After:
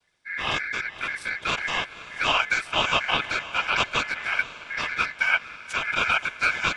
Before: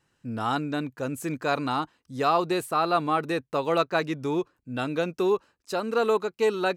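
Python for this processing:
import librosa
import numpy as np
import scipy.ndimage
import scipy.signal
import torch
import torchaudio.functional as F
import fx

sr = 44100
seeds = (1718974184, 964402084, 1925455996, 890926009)

y = fx.noise_vocoder(x, sr, seeds[0], bands=12)
y = fx.echo_diffused(y, sr, ms=526, feedback_pct=48, wet_db=-14.5)
y = y * np.sin(2.0 * np.pi * 1900.0 * np.arange(len(y)) / sr)
y = y * librosa.db_to_amplitude(3.5)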